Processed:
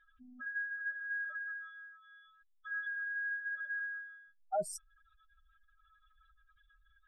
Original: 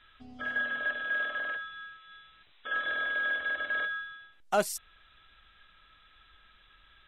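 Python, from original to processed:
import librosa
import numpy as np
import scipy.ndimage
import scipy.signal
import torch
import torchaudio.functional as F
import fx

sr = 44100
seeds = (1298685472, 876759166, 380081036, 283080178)

y = fx.spec_expand(x, sr, power=3.2)
y = y * 10.0 ** (-6.5 / 20.0)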